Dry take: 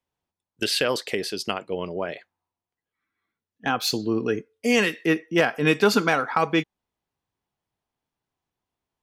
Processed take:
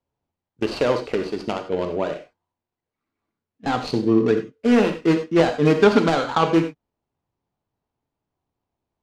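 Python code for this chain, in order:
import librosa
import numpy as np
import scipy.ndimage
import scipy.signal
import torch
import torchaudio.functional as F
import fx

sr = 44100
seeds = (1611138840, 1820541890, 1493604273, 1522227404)

y = scipy.ndimage.median_filter(x, 25, mode='constant')
y = scipy.signal.sosfilt(scipy.signal.butter(2, 6300.0, 'lowpass', fs=sr, output='sos'), y)
y = fx.rev_gated(y, sr, seeds[0], gate_ms=120, shape='flat', drr_db=6.0)
y = y * librosa.db_to_amplitude(5.0)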